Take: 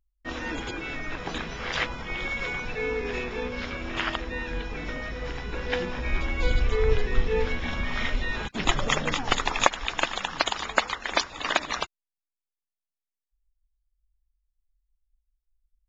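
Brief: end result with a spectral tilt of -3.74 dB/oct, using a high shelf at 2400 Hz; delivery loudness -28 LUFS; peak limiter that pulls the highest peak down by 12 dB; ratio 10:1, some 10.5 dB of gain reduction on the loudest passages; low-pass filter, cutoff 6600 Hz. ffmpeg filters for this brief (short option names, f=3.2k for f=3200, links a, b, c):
-af "lowpass=6.6k,highshelf=f=2.4k:g=-8,acompressor=threshold=-25dB:ratio=10,volume=7dB,alimiter=limit=-14dB:level=0:latency=1"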